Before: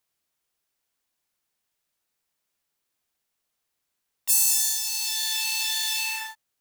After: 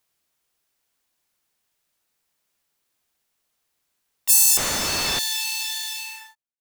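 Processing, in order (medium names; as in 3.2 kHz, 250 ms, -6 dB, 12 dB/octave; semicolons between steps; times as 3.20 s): fade out at the end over 1.96 s; 4.57–5.19 s: overdrive pedal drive 35 dB, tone 1.2 kHz, clips at -10 dBFS; trim +5 dB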